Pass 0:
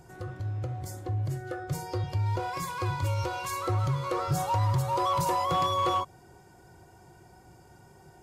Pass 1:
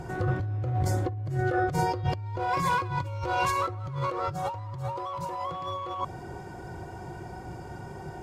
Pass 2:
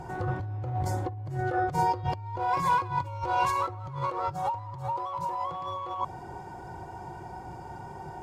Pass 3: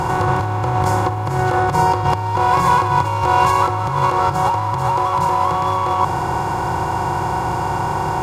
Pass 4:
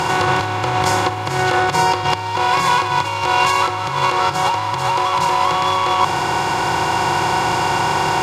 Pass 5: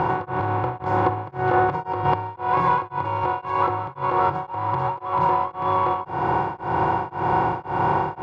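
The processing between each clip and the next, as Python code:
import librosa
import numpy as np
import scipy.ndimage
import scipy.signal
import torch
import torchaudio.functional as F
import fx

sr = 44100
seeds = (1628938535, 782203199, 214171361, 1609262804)

y1 = fx.lowpass(x, sr, hz=2300.0, slope=6)
y1 = fx.over_compress(y1, sr, threshold_db=-38.0, ratio=-1.0)
y1 = y1 * 10.0 ** (7.5 / 20.0)
y2 = fx.peak_eq(y1, sr, hz=880.0, db=11.0, octaves=0.44)
y2 = y2 * 10.0 ** (-4.0 / 20.0)
y3 = fx.bin_compress(y2, sr, power=0.4)
y3 = y3 * 10.0 ** (7.5 / 20.0)
y4 = fx.weighting(y3, sr, curve='D')
y4 = fx.rider(y4, sr, range_db=10, speed_s=2.0)
y5 = scipy.signal.sosfilt(scipy.signal.butter(2, 1100.0, 'lowpass', fs=sr, output='sos'), y4)
y5 = y5 * np.abs(np.cos(np.pi * 1.9 * np.arange(len(y5)) / sr))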